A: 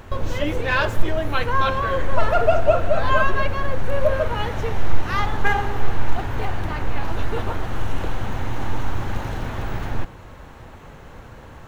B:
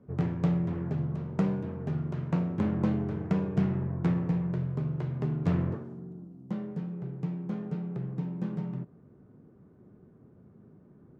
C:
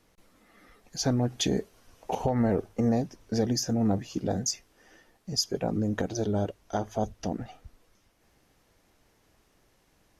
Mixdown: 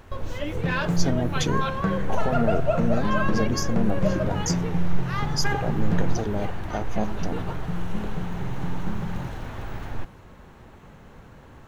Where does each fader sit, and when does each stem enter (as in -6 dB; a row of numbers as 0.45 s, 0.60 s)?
-7.0 dB, +1.0 dB, -0.5 dB; 0.00 s, 0.45 s, 0.00 s